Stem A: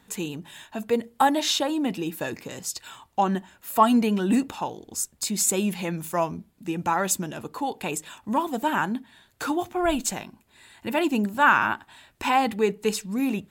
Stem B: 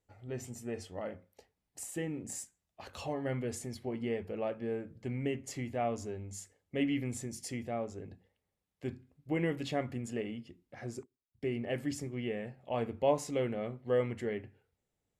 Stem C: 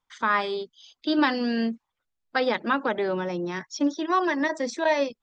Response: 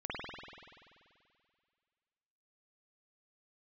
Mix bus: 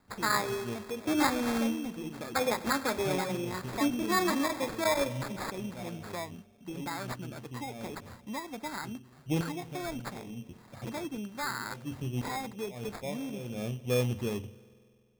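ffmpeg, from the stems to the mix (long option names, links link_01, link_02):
-filter_complex "[0:a]acompressor=threshold=-31dB:ratio=2,volume=-8dB,asplit=2[link_01][link_02];[1:a]bass=frequency=250:gain=10,treble=frequency=4000:gain=-12,volume=-1dB,asplit=2[link_03][link_04];[link_04]volume=-24dB[link_05];[2:a]volume=-6dB,asplit=2[link_06][link_07];[link_07]volume=-16dB[link_08];[link_02]apad=whole_len=669912[link_09];[link_03][link_09]sidechaincompress=threshold=-54dB:ratio=8:attack=27:release=227[link_10];[3:a]atrim=start_sample=2205[link_11];[link_05][link_08]amix=inputs=2:normalize=0[link_12];[link_12][link_11]afir=irnorm=-1:irlink=0[link_13];[link_01][link_10][link_06][link_13]amix=inputs=4:normalize=0,acrusher=samples=15:mix=1:aa=0.000001"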